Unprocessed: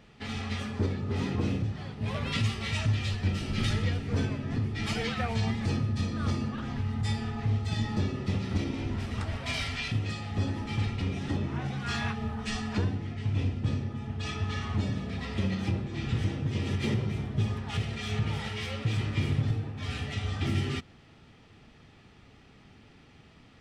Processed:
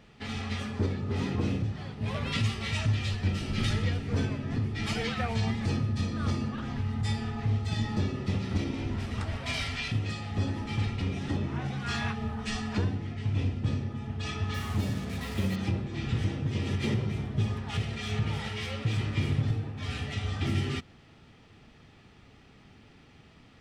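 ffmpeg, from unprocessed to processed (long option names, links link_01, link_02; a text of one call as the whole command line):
ffmpeg -i in.wav -filter_complex "[0:a]asettb=1/sr,asplit=3[link_01][link_02][link_03];[link_01]atrim=end=14.544[link_04];[link_02]atrim=start=14.54:end=15.56,asetpts=PTS-STARTPTS,afade=type=in:duration=0.004:curve=qsin,afade=type=out:start_time=1.016:duration=0.004:curve=qsin,acrusher=bits=6:mix=0:aa=0.5[link_05];[link_03]atrim=start=15.556[link_06];[link_04][link_05]acrossfade=duration=0.004:curve1=hsin:curve2=qsin[link_07];[link_07][link_06]acrossfade=duration=0.004:curve1=qsin:curve2=hsin" out.wav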